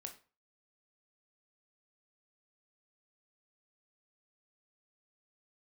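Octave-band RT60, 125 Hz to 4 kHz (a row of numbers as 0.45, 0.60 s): 0.40, 0.35, 0.35, 0.40, 0.35, 0.30 s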